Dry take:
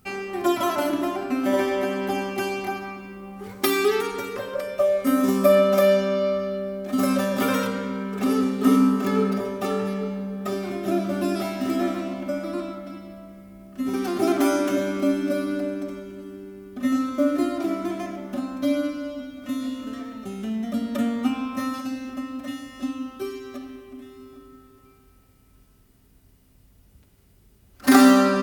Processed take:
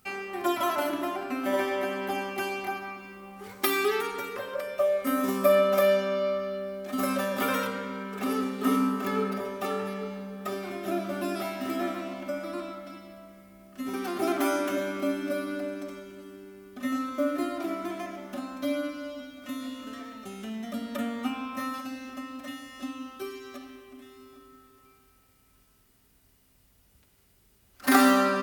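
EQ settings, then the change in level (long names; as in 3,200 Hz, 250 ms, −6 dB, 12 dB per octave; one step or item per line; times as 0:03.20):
low-shelf EQ 490 Hz −10.5 dB
dynamic equaliser 6,100 Hz, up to −6 dB, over −50 dBFS, Q 0.72
0.0 dB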